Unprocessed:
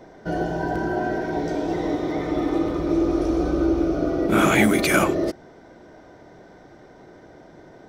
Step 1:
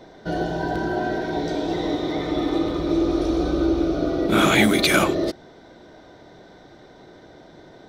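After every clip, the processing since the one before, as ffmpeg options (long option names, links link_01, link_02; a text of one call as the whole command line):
ffmpeg -i in.wav -af "equalizer=frequency=3800:width_type=o:width=0.52:gain=11.5" out.wav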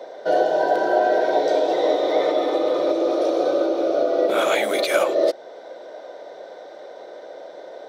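ffmpeg -i in.wav -af "alimiter=limit=-15.5dB:level=0:latency=1:release=308,highpass=frequency=540:width_type=q:width=4.9,volume=2.5dB" out.wav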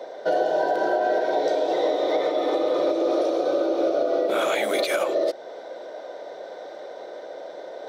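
ffmpeg -i in.wav -af "alimiter=limit=-13.5dB:level=0:latency=1:release=174,areverse,acompressor=mode=upward:threshold=-33dB:ratio=2.5,areverse" out.wav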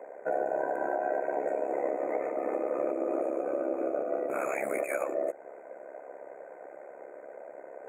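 ffmpeg -i in.wav -af "afftfilt=real='re*(1-between(b*sr/4096,2600,6500))':imag='im*(1-between(b*sr/4096,2600,6500))':win_size=4096:overlap=0.75,tremolo=f=68:d=0.75,volume=-5dB" out.wav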